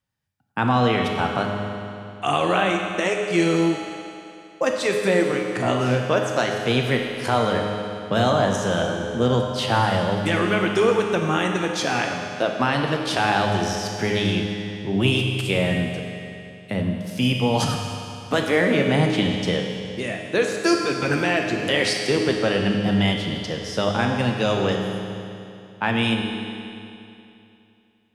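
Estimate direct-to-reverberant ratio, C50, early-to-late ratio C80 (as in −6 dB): 1.5 dB, 3.0 dB, 3.5 dB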